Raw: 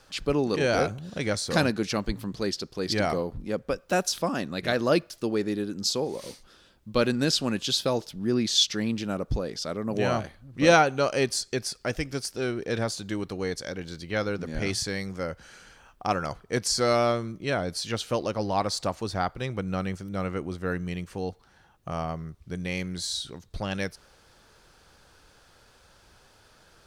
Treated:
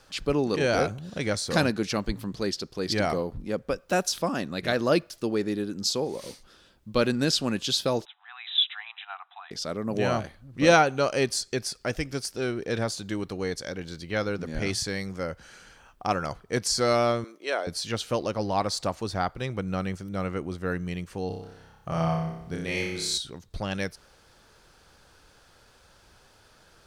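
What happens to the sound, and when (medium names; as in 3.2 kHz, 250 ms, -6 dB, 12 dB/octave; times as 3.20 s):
8.05–9.51 s: brick-wall FIR band-pass 690–4000 Hz
17.24–17.67 s: high-pass 380 Hz 24 dB/octave
21.27–23.18 s: flutter echo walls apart 5.2 m, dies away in 0.83 s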